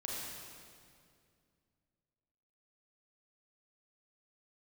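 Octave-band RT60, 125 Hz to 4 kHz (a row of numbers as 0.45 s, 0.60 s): 3.1 s, 2.9 s, 2.4 s, 2.1 s, 2.0 s, 1.9 s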